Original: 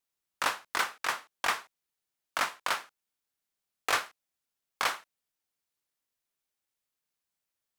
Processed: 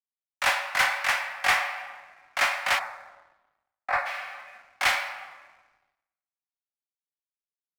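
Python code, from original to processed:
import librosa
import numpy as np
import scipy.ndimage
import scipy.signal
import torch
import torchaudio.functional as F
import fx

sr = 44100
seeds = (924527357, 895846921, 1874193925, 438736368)

p1 = fx.room_shoebox(x, sr, seeds[0], volume_m3=220.0, walls='hard', distance_m=0.32)
p2 = fx.hpss(p1, sr, part='harmonic', gain_db=3)
p3 = fx.moving_average(p2, sr, points=14, at=(2.78, 4.05), fade=0.02)
p4 = 10.0 ** (-23.0 / 20.0) * np.tanh(p3 / 10.0 ** (-23.0 / 20.0))
p5 = p3 + F.gain(torch.from_numpy(p4), -11.0).numpy()
p6 = scipy.signal.sosfilt(scipy.signal.cheby1(6, 9, 540.0, 'highpass', fs=sr, output='sos'), p5)
p7 = fx.leveller(p6, sr, passes=2)
y = fx.band_widen(p7, sr, depth_pct=100)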